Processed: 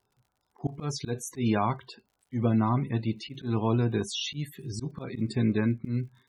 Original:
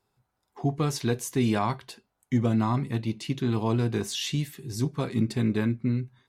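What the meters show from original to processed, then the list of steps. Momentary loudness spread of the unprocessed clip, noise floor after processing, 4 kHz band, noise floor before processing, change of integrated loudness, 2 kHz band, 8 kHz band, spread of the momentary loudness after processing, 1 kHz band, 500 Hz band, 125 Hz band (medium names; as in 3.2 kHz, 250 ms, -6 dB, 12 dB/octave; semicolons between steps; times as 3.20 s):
6 LU, -78 dBFS, -1.5 dB, -79 dBFS, -2.0 dB, -2.5 dB, -3.5 dB, 11 LU, -0.5 dB, -2.0 dB, -2.0 dB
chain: loudest bins only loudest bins 64; slow attack 118 ms; crackle 54 per s -54 dBFS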